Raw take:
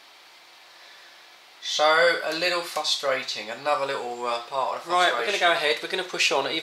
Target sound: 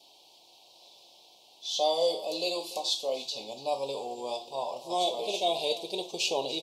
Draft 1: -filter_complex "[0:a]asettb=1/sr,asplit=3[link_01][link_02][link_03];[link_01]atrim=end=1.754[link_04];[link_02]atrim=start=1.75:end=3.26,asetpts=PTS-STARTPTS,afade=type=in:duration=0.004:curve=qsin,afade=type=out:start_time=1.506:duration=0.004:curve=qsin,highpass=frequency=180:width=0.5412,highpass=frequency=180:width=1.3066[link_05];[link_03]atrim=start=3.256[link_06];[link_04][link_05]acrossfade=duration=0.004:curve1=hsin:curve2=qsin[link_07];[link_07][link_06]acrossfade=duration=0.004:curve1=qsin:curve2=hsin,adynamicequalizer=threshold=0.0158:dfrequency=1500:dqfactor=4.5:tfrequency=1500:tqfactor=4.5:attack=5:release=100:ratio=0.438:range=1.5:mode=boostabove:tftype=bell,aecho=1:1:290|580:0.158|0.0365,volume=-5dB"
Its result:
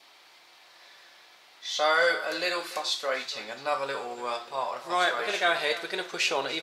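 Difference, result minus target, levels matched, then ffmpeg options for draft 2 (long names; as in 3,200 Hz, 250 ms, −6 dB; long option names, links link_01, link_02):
2,000 Hz band +13.5 dB
-filter_complex "[0:a]asettb=1/sr,asplit=3[link_01][link_02][link_03];[link_01]atrim=end=1.754[link_04];[link_02]atrim=start=1.75:end=3.26,asetpts=PTS-STARTPTS,afade=type=in:duration=0.004:curve=qsin,afade=type=out:start_time=1.506:duration=0.004:curve=qsin,highpass=frequency=180:width=0.5412,highpass=frequency=180:width=1.3066[link_05];[link_03]atrim=start=3.256[link_06];[link_04][link_05]acrossfade=duration=0.004:curve1=hsin:curve2=qsin[link_07];[link_07][link_06]acrossfade=duration=0.004:curve1=qsin:curve2=hsin,adynamicequalizer=threshold=0.0158:dfrequency=1500:dqfactor=4.5:tfrequency=1500:tqfactor=4.5:attack=5:release=100:ratio=0.438:range=1.5:mode=boostabove:tftype=bell,asuperstop=centerf=1600:order=8:qfactor=0.83,aecho=1:1:290|580:0.158|0.0365,volume=-5dB"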